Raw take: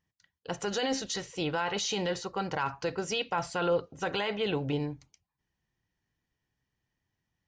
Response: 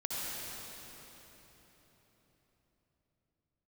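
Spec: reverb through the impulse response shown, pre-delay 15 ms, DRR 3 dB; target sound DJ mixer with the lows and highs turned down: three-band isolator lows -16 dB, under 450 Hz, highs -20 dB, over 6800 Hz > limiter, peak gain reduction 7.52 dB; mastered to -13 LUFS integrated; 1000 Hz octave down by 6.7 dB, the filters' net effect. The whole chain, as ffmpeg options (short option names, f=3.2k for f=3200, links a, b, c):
-filter_complex "[0:a]equalizer=f=1k:t=o:g=-8.5,asplit=2[a][b];[1:a]atrim=start_sample=2205,adelay=15[c];[b][c]afir=irnorm=-1:irlink=0,volume=-8dB[d];[a][d]amix=inputs=2:normalize=0,acrossover=split=450 6800:gain=0.158 1 0.1[e][f][g];[e][f][g]amix=inputs=3:normalize=0,volume=25dB,alimiter=limit=-3dB:level=0:latency=1"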